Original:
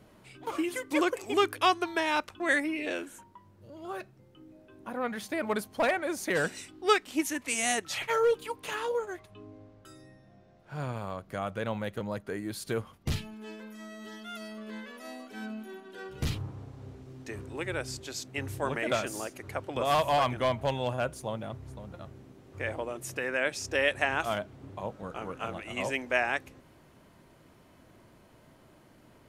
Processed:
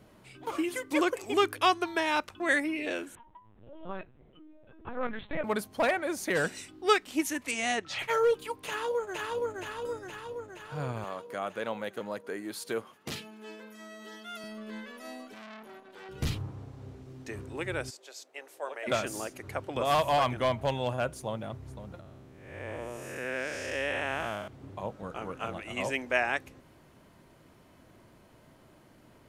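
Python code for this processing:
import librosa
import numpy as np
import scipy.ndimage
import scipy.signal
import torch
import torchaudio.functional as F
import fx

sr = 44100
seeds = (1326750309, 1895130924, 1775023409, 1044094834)

y = fx.lpc_vocoder(x, sr, seeds[0], excitation='pitch_kept', order=10, at=(3.15, 5.44))
y = fx.lowpass(y, sr, hz=4800.0, slope=12, at=(7.51, 7.99))
y = fx.echo_throw(y, sr, start_s=8.67, length_s=0.88, ms=470, feedback_pct=65, wet_db=-1.5)
y = fx.highpass(y, sr, hz=270.0, slope=12, at=(11.04, 14.44))
y = fx.transformer_sat(y, sr, knee_hz=2300.0, at=(15.34, 16.09))
y = fx.ladder_highpass(y, sr, hz=450.0, resonance_pct=40, at=(17.89, 18.86), fade=0.02)
y = fx.spec_blur(y, sr, span_ms=281.0, at=(22.0, 24.48))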